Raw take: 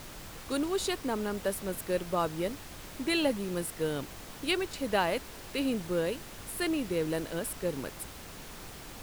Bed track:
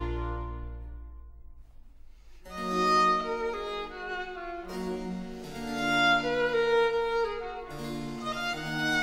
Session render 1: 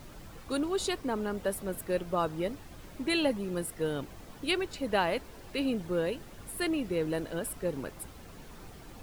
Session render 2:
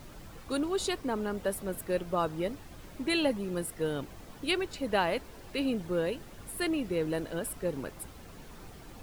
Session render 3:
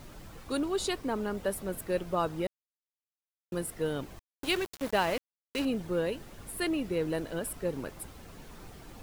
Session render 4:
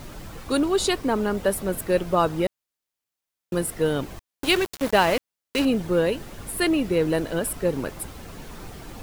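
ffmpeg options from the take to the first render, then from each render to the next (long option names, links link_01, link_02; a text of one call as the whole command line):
ffmpeg -i in.wav -af "afftdn=noise_reduction=9:noise_floor=-46" out.wav
ffmpeg -i in.wav -af anull out.wav
ffmpeg -i in.wav -filter_complex "[0:a]asettb=1/sr,asplit=3[link_01][link_02][link_03];[link_01]atrim=end=4.194[link_04];[link_02]atrim=start=4.19:end=5.65,asetpts=PTS-STARTPTS,afade=type=in:duration=0.004:curve=qsin,afade=type=out:start_time=1.456:duration=0.004:curve=qsin,aeval=exprs='val(0)*gte(abs(val(0)),0.0168)':channel_layout=same[link_05];[link_03]atrim=start=5.646[link_06];[link_04][link_05]acrossfade=duration=0.004:curve1=hsin:curve2=qsin[link_07];[link_07][link_06]acrossfade=duration=0.004:curve1=qsin:curve2=hsin,asplit=3[link_08][link_09][link_10];[link_08]atrim=end=2.47,asetpts=PTS-STARTPTS,afade=type=out:start_time=2.466:duration=0.004:curve=hsin[link_11];[link_09]atrim=start=2.47:end=3.52,asetpts=PTS-STARTPTS,volume=0[link_12];[link_10]atrim=start=3.52,asetpts=PTS-STARTPTS,afade=type=in:duration=0.004:curve=hsin[link_13];[link_11][link_12][link_13]concat=n=3:v=0:a=1" out.wav
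ffmpeg -i in.wav -af "volume=9dB" out.wav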